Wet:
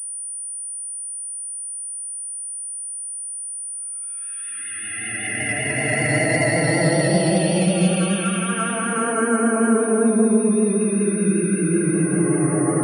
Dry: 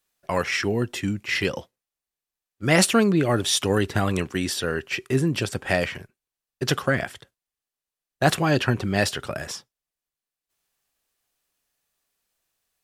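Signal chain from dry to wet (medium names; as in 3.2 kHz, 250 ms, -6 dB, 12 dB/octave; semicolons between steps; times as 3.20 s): phase dispersion lows, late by 110 ms, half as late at 860 Hz; loudest bins only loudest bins 32; Paulstretch 12×, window 0.25 s, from 2.25 s; vibrato 5.2 Hz 37 cents; class-D stage that switches slowly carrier 9.4 kHz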